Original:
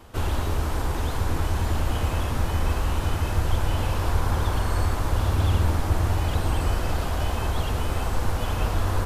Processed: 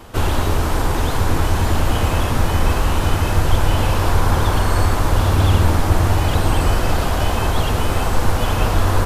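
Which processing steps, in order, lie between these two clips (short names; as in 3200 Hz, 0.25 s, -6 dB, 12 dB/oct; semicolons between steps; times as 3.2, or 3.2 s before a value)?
bell 62 Hz -7.5 dB 0.57 oct; gain +9 dB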